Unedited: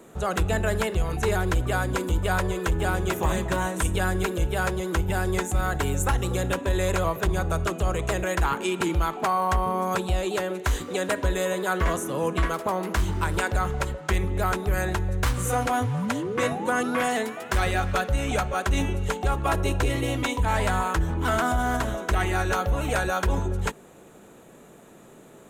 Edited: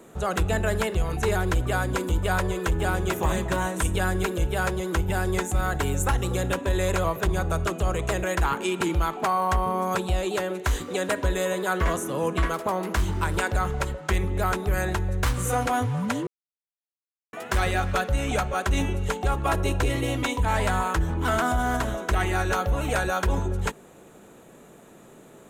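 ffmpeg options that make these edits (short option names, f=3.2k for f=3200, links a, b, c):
-filter_complex "[0:a]asplit=3[a][b][c];[a]atrim=end=16.27,asetpts=PTS-STARTPTS,afade=t=out:st=16.266:d=0.004:c=hsin[d];[b]atrim=start=16.27:end=17.33,asetpts=PTS-STARTPTS,volume=0[e];[c]atrim=start=17.33,asetpts=PTS-STARTPTS,afade=t=in:d=0.004:c=hsin[f];[d][e][f]concat=n=3:v=0:a=1"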